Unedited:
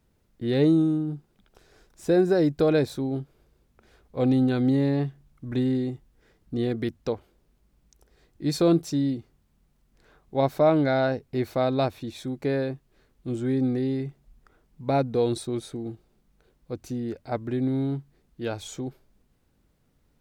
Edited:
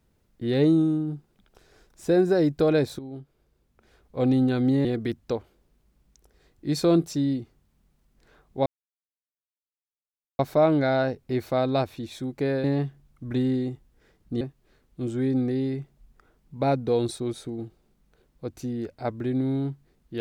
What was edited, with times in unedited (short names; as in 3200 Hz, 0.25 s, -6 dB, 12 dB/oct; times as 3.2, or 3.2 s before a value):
2.99–4.23 fade in, from -12 dB
4.85–6.62 move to 12.68
10.43 insert silence 1.73 s